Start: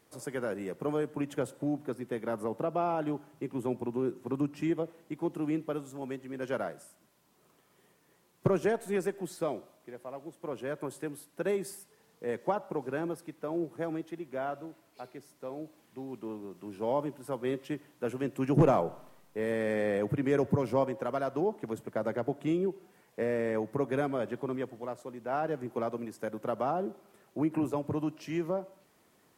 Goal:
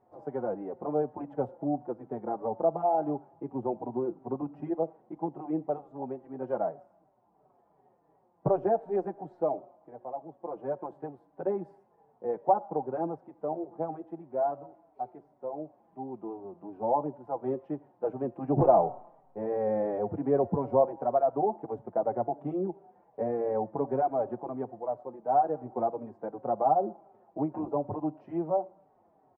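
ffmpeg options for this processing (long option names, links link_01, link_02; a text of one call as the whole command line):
ffmpeg -i in.wav -filter_complex "[0:a]lowpass=frequency=780:width_type=q:width=4.9,asplit=2[link_01][link_02];[link_02]adelay=4.9,afreqshift=-2.8[link_03];[link_01][link_03]amix=inputs=2:normalize=1" out.wav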